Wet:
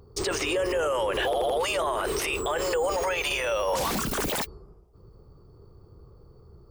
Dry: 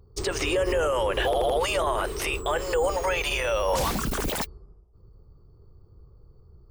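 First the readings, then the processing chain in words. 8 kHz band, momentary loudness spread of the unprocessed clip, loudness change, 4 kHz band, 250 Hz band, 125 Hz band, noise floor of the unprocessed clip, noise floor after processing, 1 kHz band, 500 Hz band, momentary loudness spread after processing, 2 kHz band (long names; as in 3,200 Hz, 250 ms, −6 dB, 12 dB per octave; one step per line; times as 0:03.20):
+1.0 dB, 4 LU, −1.0 dB, 0.0 dB, −0.5 dB, −5.0 dB, −55 dBFS, −53 dBFS, −1.0 dB, −1.0 dB, 2 LU, −0.5 dB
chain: low-shelf EQ 100 Hz −12 dB
brickwall limiter −27 dBFS, peak gain reduction 11 dB
level +8 dB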